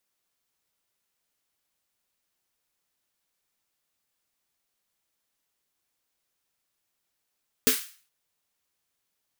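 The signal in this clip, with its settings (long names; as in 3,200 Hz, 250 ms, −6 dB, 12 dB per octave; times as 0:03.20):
synth snare length 0.42 s, tones 260 Hz, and 440 Hz, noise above 1,400 Hz, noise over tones 2 dB, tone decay 0.15 s, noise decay 0.42 s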